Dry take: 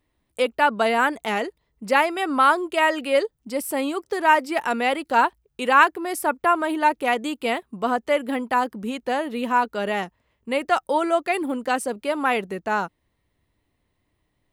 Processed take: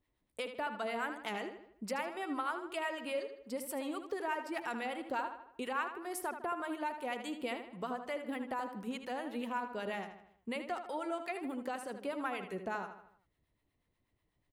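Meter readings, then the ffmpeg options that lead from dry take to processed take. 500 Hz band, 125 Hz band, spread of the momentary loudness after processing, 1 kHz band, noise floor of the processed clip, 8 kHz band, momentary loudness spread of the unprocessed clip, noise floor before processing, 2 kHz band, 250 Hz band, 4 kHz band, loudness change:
−16.0 dB, can't be measured, 5 LU, −18.0 dB, −81 dBFS, −13.5 dB, 9 LU, −73 dBFS, −17.5 dB, −13.5 dB, −15.5 dB, −17.0 dB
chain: -filter_complex "[0:a]acompressor=threshold=-28dB:ratio=3,acrossover=split=790[link_01][link_02];[link_01]aeval=exprs='val(0)*(1-0.7/2+0.7/2*cos(2*PI*8.2*n/s))':channel_layout=same[link_03];[link_02]aeval=exprs='val(0)*(1-0.7/2-0.7/2*cos(2*PI*8.2*n/s))':channel_layout=same[link_04];[link_03][link_04]amix=inputs=2:normalize=0,asplit=2[link_05][link_06];[link_06]adelay=78,lowpass=frequency=4600:poles=1,volume=-8.5dB,asplit=2[link_07][link_08];[link_08]adelay=78,lowpass=frequency=4600:poles=1,volume=0.48,asplit=2[link_09][link_10];[link_10]adelay=78,lowpass=frequency=4600:poles=1,volume=0.48,asplit=2[link_11][link_12];[link_12]adelay=78,lowpass=frequency=4600:poles=1,volume=0.48,asplit=2[link_13][link_14];[link_14]adelay=78,lowpass=frequency=4600:poles=1,volume=0.48[link_15];[link_05][link_07][link_09][link_11][link_13][link_15]amix=inputs=6:normalize=0,volume=-6dB"

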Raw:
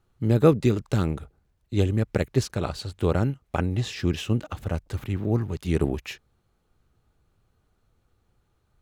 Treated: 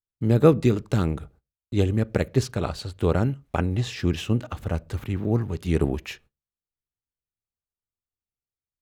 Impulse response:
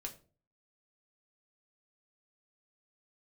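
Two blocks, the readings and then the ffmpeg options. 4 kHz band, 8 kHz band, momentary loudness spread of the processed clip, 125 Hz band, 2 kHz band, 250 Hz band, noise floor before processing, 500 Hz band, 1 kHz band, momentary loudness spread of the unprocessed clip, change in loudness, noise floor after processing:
0.0 dB, 0.0 dB, 12 LU, +1.0 dB, +1.0 dB, +1.0 dB, −70 dBFS, +1.5 dB, +1.0 dB, 12 LU, +1.0 dB, below −85 dBFS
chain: -filter_complex "[0:a]agate=range=-34dB:threshold=-52dB:ratio=16:detection=peak,asplit=2[link_01][link_02];[1:a]atrim=start_sample=2205,afade=type=out:start_time=0.2:duration=0.01,atrim=end_sample=9261,lowpass=3600[link_03];[link_02][link_03]afir=irnorm=-1:irlink=0,volume=-12dB[link_04];[link_01][link_04]amix=inputs=2:normalize=0"

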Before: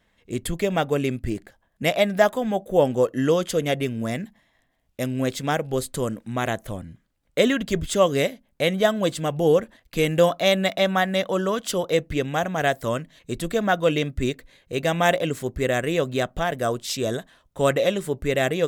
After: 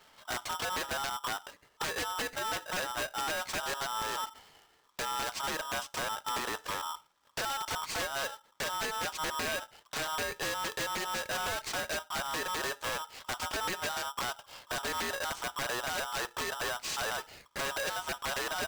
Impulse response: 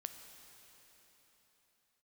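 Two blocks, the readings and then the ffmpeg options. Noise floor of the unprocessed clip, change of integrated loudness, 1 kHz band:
−68 dBFS, −11.0 dB, −6.5 dB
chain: -filter_complex "[0:a]highpass=100,bandreject=frequency=1600:width=6.1,acompressor=threshold=-34dB:ratio=10,aeval=exprs='(mod(29.9*val(0)+1,2)-1)/29.9':channel_layout=same,aeval=exprs='0.0335*(cos(1*acos(clip(val(0)/0.0335,-1,1)))-cos(1*PI/2))+0.00376*(cos(2*acos(clip(val(0)/0.0335,-1,1)))-cos(2*PI/2))+0.00596*(cos(5*acos(clip(val(0)/0.0335,-1,1)))-cos(5*PI/2))+0.00299*(cos(8*acos(clip(val(0)/0.0335,-1,1)))-cos(8*PI/2))':channel_layout=same,asplit=2[link_01][link_02];[1:a]atrim=start_sample=2205,atrim=end_sample=4410[link_03];[link_02][link_03]afir=irnorm=-1:irlink=0,volume=-8dB[link_04];[link_01][link_04]amix=inputs=2:normalize=0,aresample=16000,aresample=44100,aeval=exprs='val(0)*sgn(sin(2*PI*1100*n/s))':channel_layout=same"

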